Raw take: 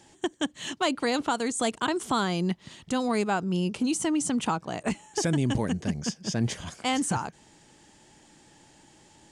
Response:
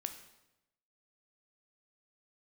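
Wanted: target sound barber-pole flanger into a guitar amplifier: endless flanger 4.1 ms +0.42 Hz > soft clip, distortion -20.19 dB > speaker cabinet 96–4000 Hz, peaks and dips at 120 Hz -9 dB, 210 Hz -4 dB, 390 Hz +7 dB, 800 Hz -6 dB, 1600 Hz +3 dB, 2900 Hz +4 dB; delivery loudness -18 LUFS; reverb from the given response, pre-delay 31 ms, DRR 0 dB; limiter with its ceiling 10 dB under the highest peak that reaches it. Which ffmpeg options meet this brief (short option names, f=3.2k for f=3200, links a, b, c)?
-filter_complex "[0:a]alimiter=level_in=1dB:limit=-24dB:level=0:latency=1,volume=-1dB,asplit=2[a][b];[1:a]atrim=start_sample=2205,adelay=31[c];[b][c]afir=irnorm=-1:irlink=0,volume=1.5dB[d];[a][d]amix=inputs=2:normalize=0,asplit=2[e][f];[f]adelay=4.1,afreqshift=0.42[g];[e][g]amix=inputs=2:normalize=1,asoftclip=threshold=-23.5dB,highpass=96,equalizer=f=120:t=q:w=4:g=-9,equalizer=f=210:t=q:w=4:g=-4,equalizer=f=390:t=q:w=4:g=7,equalizer=f=800:t=q:w=4:g=-6,equalizer=f=1.6k:t=q:w=4:g=3,equalizer=f=2.9k:t=q:w=4:g=4,lowpass=f=4k:w=0.5412,lowpass=f=4k:w=1.3066,volume=18dB"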